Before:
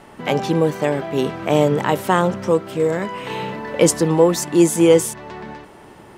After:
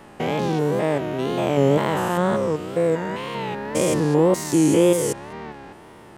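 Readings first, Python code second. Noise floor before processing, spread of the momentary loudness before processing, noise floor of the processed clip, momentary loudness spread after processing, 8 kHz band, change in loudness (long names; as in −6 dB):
−44 dBFS, 13 LU, −45 dBFS, 11 LU, −5.0 dB, −3.0 dB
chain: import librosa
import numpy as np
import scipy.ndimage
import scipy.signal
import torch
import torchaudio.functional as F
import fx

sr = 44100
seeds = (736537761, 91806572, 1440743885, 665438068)

y = fx.spec_steps(x, sr, hold_ms=200)
y = fx.wow_flutter(y, sr, seeds[0], rate_hz=2.1, depth_cents=120.0)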